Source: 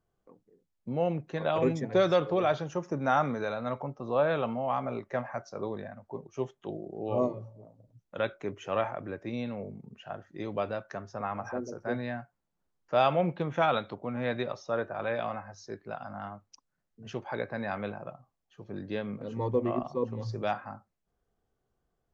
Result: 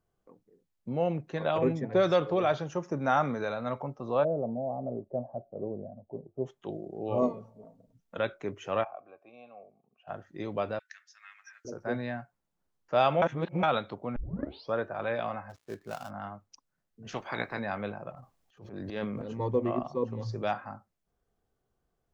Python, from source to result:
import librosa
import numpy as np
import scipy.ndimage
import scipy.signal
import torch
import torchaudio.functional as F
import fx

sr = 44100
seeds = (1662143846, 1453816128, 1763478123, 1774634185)

y = fx.high_shelf(x, sr, hz=fx.line((1.57, 3300.0), (2.02, 4500.0)), db=-12.0, at=(1.57, 2.02), fade=0.02)
y = fx.cheby1_lowpass(y, sr, hz=680.0, order=4, at=(4.23, 6.45), fade=0.02)
y = fx.comb(y, sr, ms=4.4, depth=0.66, at=(7.22, 8.17))
y = fx.vowel_filter(y, sr, vowel='a', at=(8.83, 10.07), fade=0.02)
y = fx.cheby1_highpass(y, sr, hz=1800.0, order=4, at=(10.79, 11.65))
y = fx.dead_time(y, sr, dead_ms=0.11, at=(15.49, 16.09), fade=0.02)
y = fx.spec_clip(y, sr, under_db=17, at=(17.07, 17.58), fade=0.02)
y = fx.transient(y, sr, attack_db=-9, sustain_db=10, at=(18.1, 19.4))
y = fx.edit(y, sr, fx.reverse_span(start_s=13.22, length_s=0.41),
    fx.tape_start(start_s=14.16, length_s=0.58), tone=tone)